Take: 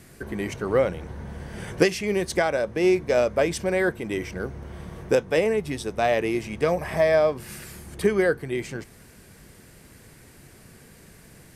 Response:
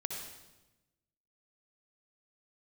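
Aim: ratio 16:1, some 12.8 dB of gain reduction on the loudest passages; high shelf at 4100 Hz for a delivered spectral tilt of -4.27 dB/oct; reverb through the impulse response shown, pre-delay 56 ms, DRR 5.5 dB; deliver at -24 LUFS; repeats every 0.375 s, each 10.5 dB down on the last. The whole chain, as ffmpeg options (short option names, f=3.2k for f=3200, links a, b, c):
-filter_complex "[0:a]highshelf=f=4.1k:g=8,acompressor=threshold=-27dB:ratio=16,aecho=1:1:375|750|1125:0.299|0.0896|0.0269,asplit=2[a][b];[1:a]atrim=start_sample=2205,adelay=56[c];[b][c]afir=irnorm=-1:irlink=0,volume=-6.5dB[d];[a][d]amix=inputs=2:normalize=0,volume=7.5dB"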